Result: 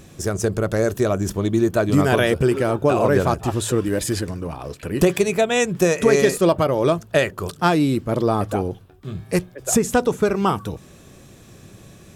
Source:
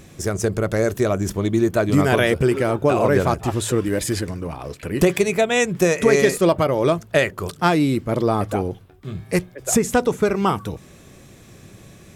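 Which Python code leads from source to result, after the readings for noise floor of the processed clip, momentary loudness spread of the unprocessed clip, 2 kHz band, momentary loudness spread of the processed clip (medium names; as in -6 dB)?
-46 dBFS, 11 LU, -1.5 dB, 11 LU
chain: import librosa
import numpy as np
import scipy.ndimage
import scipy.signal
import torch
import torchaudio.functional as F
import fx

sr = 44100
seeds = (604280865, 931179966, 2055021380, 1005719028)

y = fx.peak_eq(x, sr, hz=2100.0, db=-5.5, octaves=0.25)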